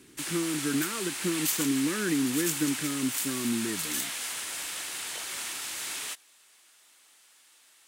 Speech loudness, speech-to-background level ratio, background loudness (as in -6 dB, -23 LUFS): -31.0 LUFS, 0.5 dB, -31.5 LUFS